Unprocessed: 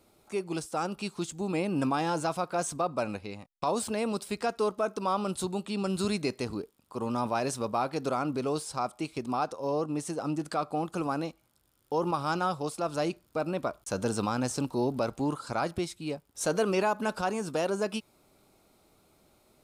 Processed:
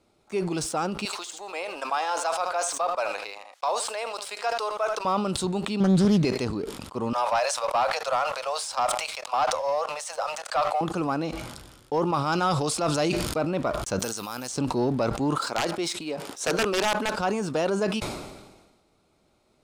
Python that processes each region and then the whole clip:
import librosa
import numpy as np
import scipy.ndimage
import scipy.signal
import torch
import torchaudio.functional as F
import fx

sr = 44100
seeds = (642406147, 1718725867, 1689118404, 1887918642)

y = fx.chain(x, sr, fx.highpass(hz=580.0, slope=24),
    fx.echo_single(ms=78, db=-15.0), at=(1.05, 5.05))
y = fx.chain(y, sr, fx.peak_eq(hz=170.0, db=11.0, octaves=1.3),
    fx.doppler_dist(depth_ms=0.33), at=(5.8, 6.25))
y = fx.chain(y, sr, fx.steep_highpass(hz=530.0, slope=72),
    fx.leveller(passes=1), at=(7.13, 10.81))
y = fx.chain(y, sr, fx.high_shelf(hz=2500.0, db=6.5),
    fx.sustainer(db_per_s=24.0), at=(12.32, 13.38))
y = fx.chain(y, sr, fx.tilt_eq(slope=3.0),
    fx.level_steps(step_db=13),
    fx.resample_bad(factor=3, down='none', up='zero_stuff'), at=(13.99, 14.56))
y = fx.chain(y, sr, fx.highpass(hz=310.0, slope=12),
    fx.overflow_wrap(gain_db=20.0), at=(15.38, 17.14))
y = scipy.signal.sosfilt(scipy.signal.butter(2, 7300.0, 'lowpass', fs=sr, output='sos'), y)
y = fx.leveller(y, sr, passes=1)
y = fx.sustainer(y, sr, db_per_s=46.0)